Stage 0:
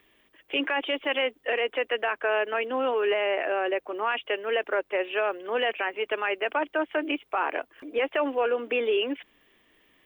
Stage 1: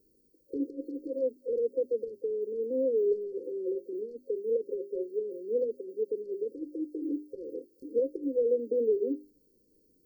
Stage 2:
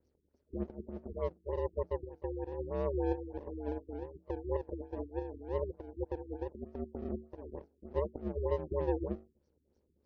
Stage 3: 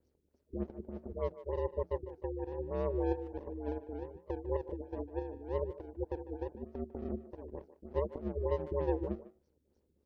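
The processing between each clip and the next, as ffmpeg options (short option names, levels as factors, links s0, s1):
-af "bandreject=f=50:t=h:w=6,bandreject=f=100:t=h:w=6,bandreject=f=150:t=h:w=6,bandreject=f=200:t=h:w=6,bandreject=f=250:t=h:w=6,bandreject=f=300:t=h:w=6,bandreject=f=350:t=h:w=6,bandreject=f=400:t=h:w=6,afftfilt=real='re*(1-between(b*sr/4096,540,4200))':imag='im*(1-between(b*sr/4096,540,4200))':win_size=4096:overlap=0.75"
-af "aeval=exprs='if(lt(val(0),0),0.251*val(0),val(0))':c=same,aeval=exprs='val(0)*sin(2*PI*74*n/s)':c=same,afftfilt=real='re*lt(b*sr/1024,400*pow(6900/400,0.5+0.5*sin(2*PI*3.3*pts/sr)))':imag='im*lt(b*sr/1024,400*pow(6900/400,0.5+0.5*sin(2*PI*3.3*pts/sr)))':win_size=1024:overlap=0.75"
-filter_complex "[0:a]asplit=2[s0][s1];[s1]adelay=150,highpass=300,lowpass=3400,asoftclip=type=hard:threshold=0.0447,volume=0.2[s2];[s0][s2]amix=inputs=2:normalize=0"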